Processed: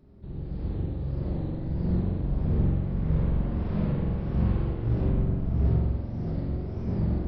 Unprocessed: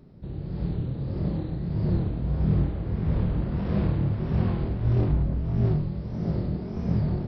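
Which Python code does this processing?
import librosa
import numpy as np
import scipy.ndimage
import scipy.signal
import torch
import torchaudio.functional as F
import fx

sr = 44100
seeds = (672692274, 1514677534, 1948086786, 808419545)

y = fx.octave_divider(x, sr, octaves=1, level_db=-1.0)
y = fx.rev_spring(y, sr, rt60_s=1.2, pass_ms=(44,), chirp_ms=50, drr_db=-1.5)
y = F.gain(torch.from_numpy(y), -7.0).numpy()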